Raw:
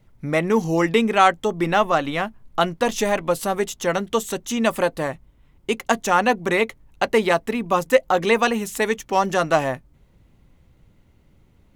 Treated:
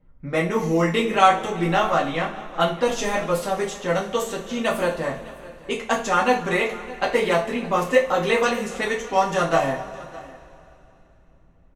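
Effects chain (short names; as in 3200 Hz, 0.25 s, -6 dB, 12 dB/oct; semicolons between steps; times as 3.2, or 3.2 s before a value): low-pass opened by the level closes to 1500 Hz, open at -16.5 dBFS; on a send: echo 0.61 s -20 dB; on the sum: two-slope reverb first 0.3 s, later 3.2 s, from -22 dB, DRR -4 dB; gain -6.5 dB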